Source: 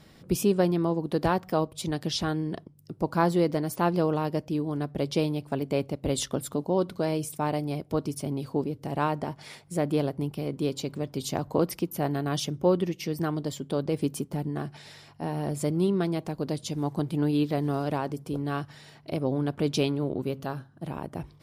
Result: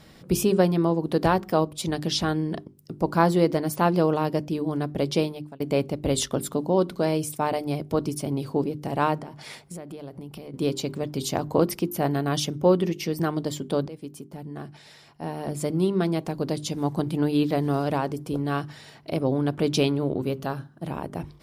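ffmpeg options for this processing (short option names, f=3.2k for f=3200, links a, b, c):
-filter_complex "[0:a]asettb=1/sr,asplit=3[a][b][c];[a]atrim=end=9.184[d];[b]atrim=start=9.18:end=10.54,asetpts=PTS-STARTPTS,afade=t=in:d=0.004:c=qsin,afade=t=out:st=1.356:d=0.004:c=qsin,acompressor=threshold=-37dB:ratio=16:attack=3.2:release=140:knee=1:detection=peak[e];[c]atrim=start=10.536[f];[d][e]acrossfade=d=0.004:c1=hsin:c2=qsin[g];[g][f]acrossfade=d=0.004:c1=qsin:c2=hsin,asplit=3[h][i][j];[h]atrim=end=5.6,asetpts=PTS-STARTPTS,afade=t=out:st=5.15:d=0.45[k];[i]atrim=start=5.6:end=13.88,asetpts=PTS-STARTPTS,afade=t=in:d=0.004:c=hsin,afade=t=out:st=8.276:d=0.004:c=hsin:silence=0.149624[l];[j]atrim=start=13.88,asetpts=PTS-STARTPTS,afade=t=in:d=2.39:silence=0.149624[m];[k][l][m]concat=n=3:v=0:a=1,bandreject=f=50:t=h:w=6,bandreject=f=100:t=h:w=6,bandreject=f=150:t=h:w=6,bandreject=f=200:t=h:w=6,bandreject=f=250:t=h:w=6,bandreject=f=300:t=h:w=6,bandreject=f=350:t=h:w=6,bandreject=f=400:t=h:w=6,volume=4dB"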